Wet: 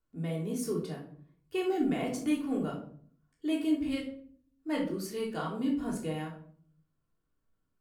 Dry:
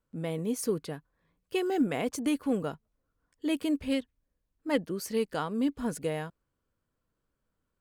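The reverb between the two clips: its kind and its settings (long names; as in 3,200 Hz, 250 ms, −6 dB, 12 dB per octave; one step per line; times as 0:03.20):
rectangular room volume 600 cubic metres, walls furnished, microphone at 3.3 metres
level −8 dB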